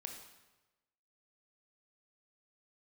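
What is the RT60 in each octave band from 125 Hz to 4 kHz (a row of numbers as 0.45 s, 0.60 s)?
1.2 s, 1.0 s, 1.1 s, 1.1 s, 1.0 s, 0.95 s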